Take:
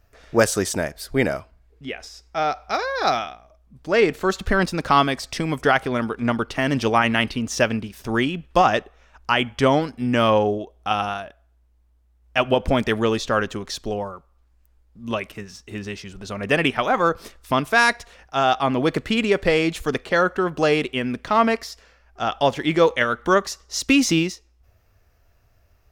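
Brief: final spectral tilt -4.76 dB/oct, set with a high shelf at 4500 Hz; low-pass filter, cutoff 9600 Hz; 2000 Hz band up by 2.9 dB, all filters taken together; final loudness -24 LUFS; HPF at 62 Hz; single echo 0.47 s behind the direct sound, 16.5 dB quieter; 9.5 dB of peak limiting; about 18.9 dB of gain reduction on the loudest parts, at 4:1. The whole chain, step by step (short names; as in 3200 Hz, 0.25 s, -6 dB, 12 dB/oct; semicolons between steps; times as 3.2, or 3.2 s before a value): HPF 62 Hz; LPF 9600 Hz; bell 2000 Hz +5.5 dB; high shelf 4500 Hz -9 dB; compressor 4:1, threshold -35 dBFS; limiter -26.5 dBFS; echo 0.47 s -16.5 dB; gain +14.5 dB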